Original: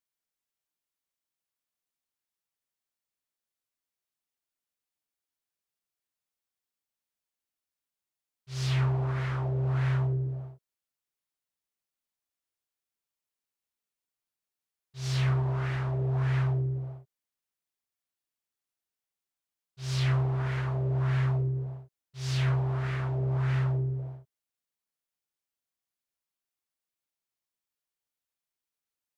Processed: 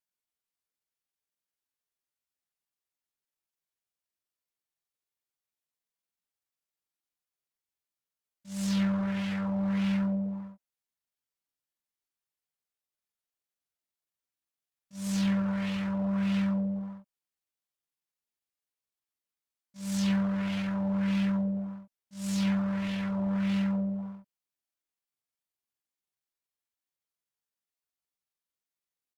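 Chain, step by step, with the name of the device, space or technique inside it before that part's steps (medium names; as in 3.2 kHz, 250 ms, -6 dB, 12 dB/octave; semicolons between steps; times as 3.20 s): chipmunk voice (pitch shift +7 st); trim -1 dB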